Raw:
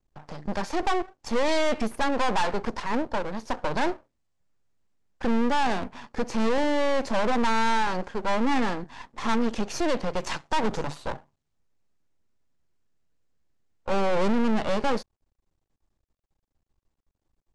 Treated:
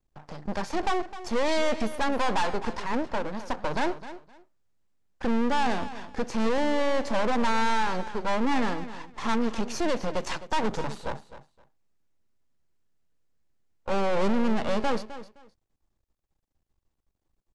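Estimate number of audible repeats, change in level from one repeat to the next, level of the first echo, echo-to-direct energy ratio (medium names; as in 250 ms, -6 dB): 2, -14.0 dB, -14.0 dB, -14.0 dB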